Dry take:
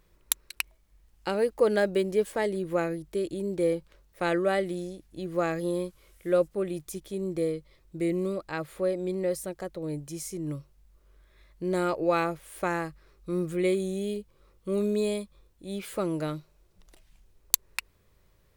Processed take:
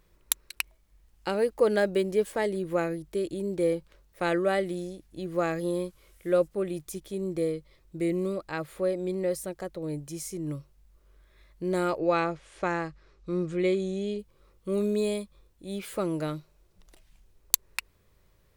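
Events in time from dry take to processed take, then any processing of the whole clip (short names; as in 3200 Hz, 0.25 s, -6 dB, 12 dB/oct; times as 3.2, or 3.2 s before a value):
11.98–14.19 LPF 7000 Hz 24 dB/oct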